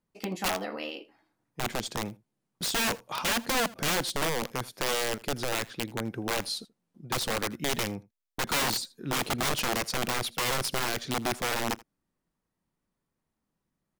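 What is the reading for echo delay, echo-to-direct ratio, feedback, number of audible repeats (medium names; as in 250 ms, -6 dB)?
81 ms, -22.0 dB, no regular repeats, 1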